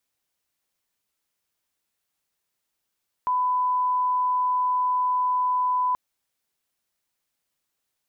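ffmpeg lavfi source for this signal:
ffmpeg -f lavfi -i "sine=frequency=1000:duration=2.68:sample_rate=44100,volume=-1.94dB" out.wav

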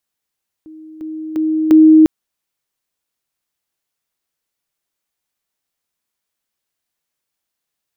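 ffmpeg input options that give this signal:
ffmpeg -f lavfi -i "aevalsrc='pow(10,(-33.5+10*floor(t/0.35))/20)*sin(2*PI*314*t)':duration=1.4:sample_rate=44100" out.wav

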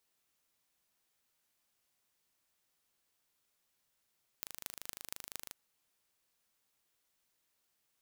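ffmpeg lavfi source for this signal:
ffmpeg -f lavfi -i "aevalsrc='0.266*eq(mod(n,1703),0)*(0.5+0.5*eq(mod(n,10218),0))':duration=1.09:sample_rate=44100" out.wav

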